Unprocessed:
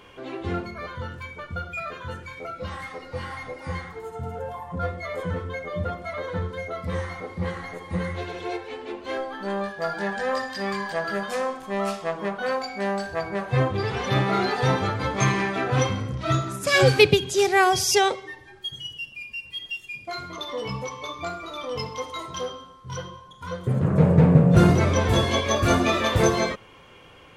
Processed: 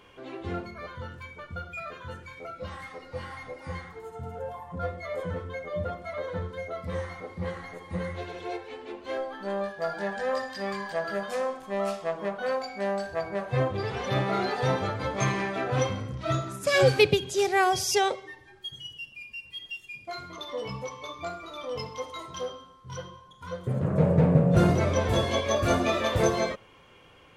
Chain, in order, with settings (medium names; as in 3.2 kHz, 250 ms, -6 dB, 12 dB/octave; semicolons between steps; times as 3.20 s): dynamic bell 590 Hz, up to +6 dB, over -39 dBFS, Q 2.8; trim -5.5 dB